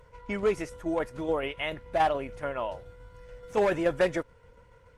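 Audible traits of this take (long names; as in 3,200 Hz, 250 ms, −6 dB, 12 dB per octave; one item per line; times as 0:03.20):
tremolo saw down 7 Hz, depth 40%
Opus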